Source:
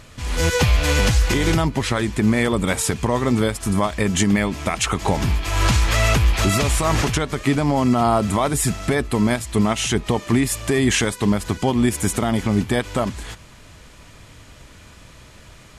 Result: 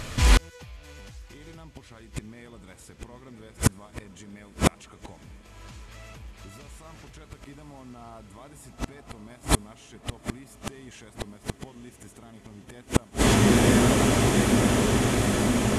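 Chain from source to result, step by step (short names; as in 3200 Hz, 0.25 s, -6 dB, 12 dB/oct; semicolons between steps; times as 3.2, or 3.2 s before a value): diffused feedback echo 0.944 s, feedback 76%, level -10.5 dB; flipped gate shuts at -13 dBFS, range -36 dB; gain +8 dB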